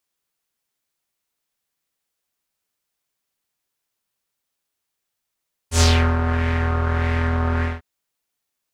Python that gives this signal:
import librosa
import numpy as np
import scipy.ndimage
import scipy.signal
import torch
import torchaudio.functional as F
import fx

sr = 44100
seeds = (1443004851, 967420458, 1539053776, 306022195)

y = fx.sub_patch_wobble(sr, seeds[0], note=40, wave='square', wave2='saw', interval_st=7, level2_db=-9.0, sub_db=-15.0, noise_db=-2, kind='lowpass', cutoff_hz=1500.0, q=2.2, env_oct=2.5, env_decay_s=0.33, env_sustain_pct=5, attack_ms=96.0, decay_s=0.37, sustain_db=-7, release_s=0.18, note_s=1.92, lfo_hz=1.6, wobble_oct=0.3)